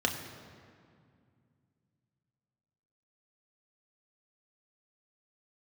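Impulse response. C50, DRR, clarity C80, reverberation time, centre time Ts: 7.5 dB, 2.0 dB, 8.5 dB, 2.2 s, 38 ms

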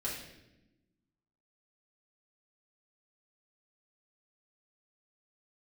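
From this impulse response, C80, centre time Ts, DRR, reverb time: 6.0 dB, 47 ms, -7.0 dB, 0.95 s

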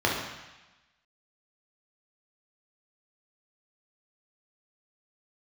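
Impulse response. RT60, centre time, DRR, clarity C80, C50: 1.1 s, 58 ms, -3.0 dB, 5.0 dB, 2.0 dB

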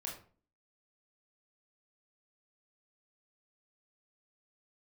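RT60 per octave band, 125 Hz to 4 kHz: 0.50, 0.60, 0.45, 0.40, 0.35, 0.25 s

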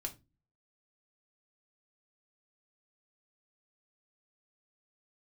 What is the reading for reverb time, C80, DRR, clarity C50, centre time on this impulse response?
0.25 s, 24.0 dB, 2.5 dB, 16.5 dB, 9 ms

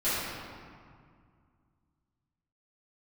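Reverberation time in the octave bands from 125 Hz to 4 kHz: 2.9, 2.7, 2.0, 2.1, 1.7, 1.2 s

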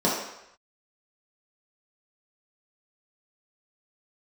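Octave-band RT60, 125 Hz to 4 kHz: 0.60, 0.65, 0.80, 0.90, 0.90, 0.80 s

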